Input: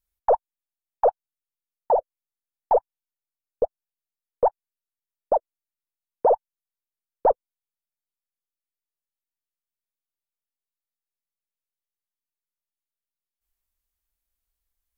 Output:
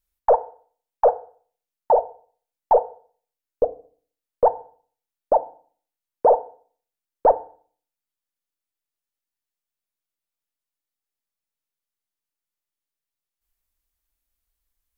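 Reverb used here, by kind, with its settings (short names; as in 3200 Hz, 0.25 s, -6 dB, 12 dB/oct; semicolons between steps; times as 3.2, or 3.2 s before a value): FDN reverb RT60 0.45 s, low-frequency decay 1.25×, high-frequency decay 0.95×, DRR 10.5 dB; gain +2.5 dB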